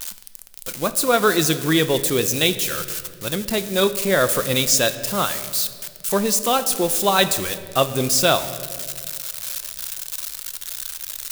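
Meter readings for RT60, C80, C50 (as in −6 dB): 2.0 s, 14.0 dB, 13.0 dB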